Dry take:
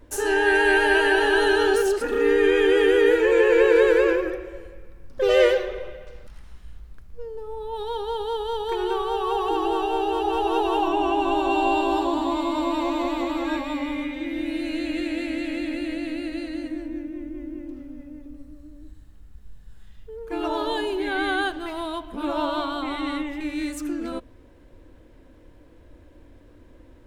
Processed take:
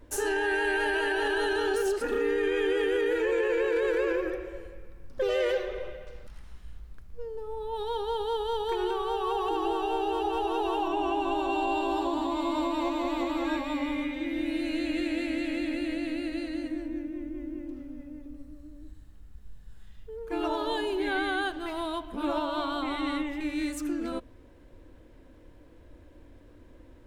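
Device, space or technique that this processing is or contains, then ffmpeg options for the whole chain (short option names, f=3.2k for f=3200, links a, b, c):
stacked limiters: -af "alimiter=limit=-13dB:level=0:latency=1:release=19,alimiter=limit=-17dB:level=0:latency=1:release=297,volume=-2.5dB"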